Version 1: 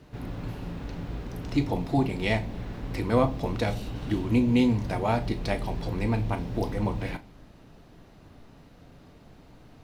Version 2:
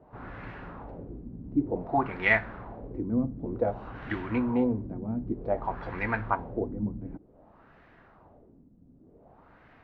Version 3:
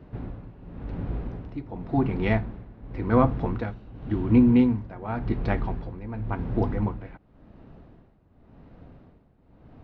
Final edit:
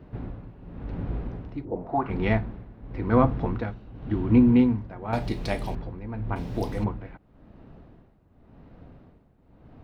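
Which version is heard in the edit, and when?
3
0:01.65–0:02.10: punch in from 2
0:05.13–0:05.75: punch in from 1
0:06.36–0:06.84: punch in from 1

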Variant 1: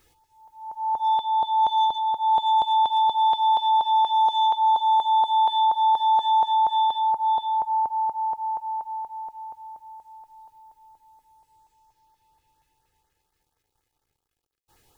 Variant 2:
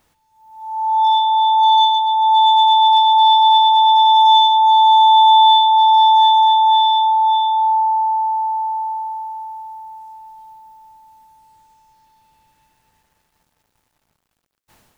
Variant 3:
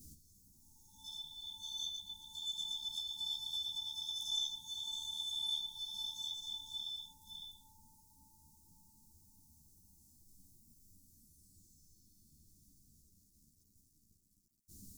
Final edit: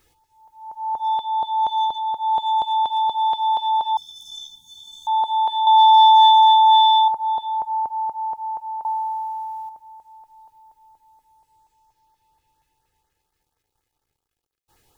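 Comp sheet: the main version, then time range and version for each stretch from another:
1
0:03.97–0:05.07: punch in from 3
0:05.67–0:07.08: punch in from 2
0:08.85–0:09.69: punch in from 2

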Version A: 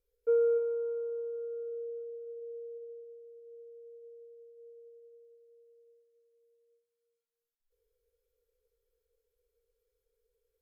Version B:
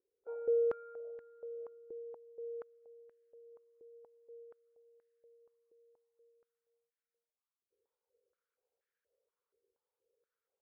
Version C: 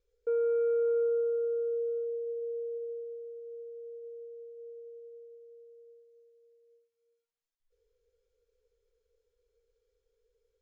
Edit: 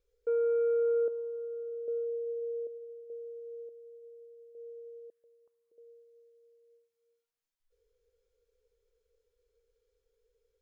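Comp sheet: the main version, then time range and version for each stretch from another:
C
0:01.08–0:01.88: punch in from A
0:02.67–0:03.10: punch in from A
0:03.69–0:04.55: punch in from A
0:05.10–0:05.78: punch in from B

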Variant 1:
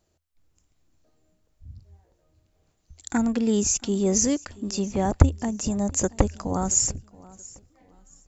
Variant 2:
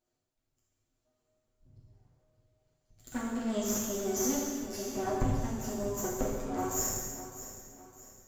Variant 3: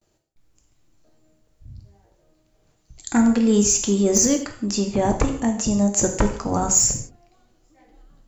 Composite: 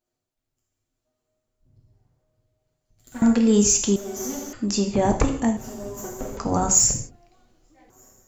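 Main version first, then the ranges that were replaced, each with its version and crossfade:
2
0:03.22–0:03.96: punch in from 3
0:04.53–0:05.57: punch in from 3
0:06.37–0:07.90: punch in from 3
not used: 1

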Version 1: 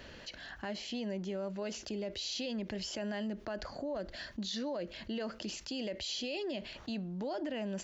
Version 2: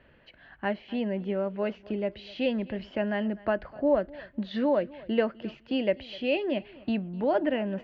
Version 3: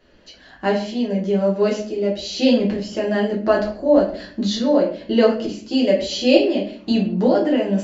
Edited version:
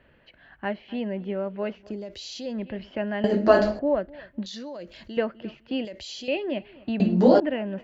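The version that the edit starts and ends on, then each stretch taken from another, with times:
2
0:01.96–0:02.50: punch in from 1, crossfade 0.24 s
0:03.24–0:03.79: punch in from 3
0:04.46–0:05.17: punch in from 1
0:05.85–0:06.28: punch in from 1
0:07.00–0:07.40: punch in from 3

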